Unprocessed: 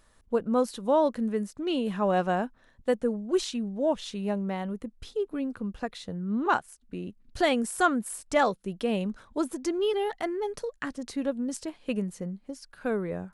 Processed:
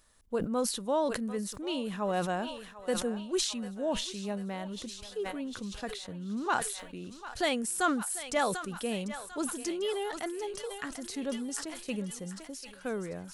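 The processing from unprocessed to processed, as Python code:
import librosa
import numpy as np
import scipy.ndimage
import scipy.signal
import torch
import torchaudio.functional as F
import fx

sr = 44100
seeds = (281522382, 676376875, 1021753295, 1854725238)

p1 = fx.high_shelf(x, sr, hz=3100.0, db=9.5)
p2 = p1 + fx.echo_thinned(p1, sr, ms=745, feedback_pct=67, hz=760.0, wet_db=-12.5, dry=0)
p3 = fx.sustainer(p2, sr, db_per_s=61.0)
y = p3 * 10.0 ** (-6.5 / 20.0)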